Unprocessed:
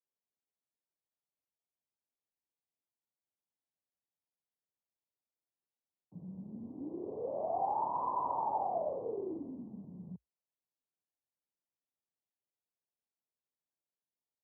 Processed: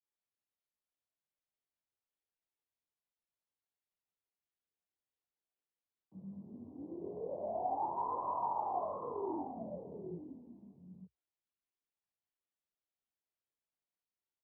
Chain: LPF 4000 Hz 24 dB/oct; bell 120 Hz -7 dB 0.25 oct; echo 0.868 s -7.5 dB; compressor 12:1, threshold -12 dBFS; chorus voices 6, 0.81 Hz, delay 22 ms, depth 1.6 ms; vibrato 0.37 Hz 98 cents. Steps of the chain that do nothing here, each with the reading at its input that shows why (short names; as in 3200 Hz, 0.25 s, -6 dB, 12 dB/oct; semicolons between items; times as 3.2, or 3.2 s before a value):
LPF 4000 Hz: input band ends at 1200 Hz; compressor, threshold -12 dBFS: input peak -23.0 dBFS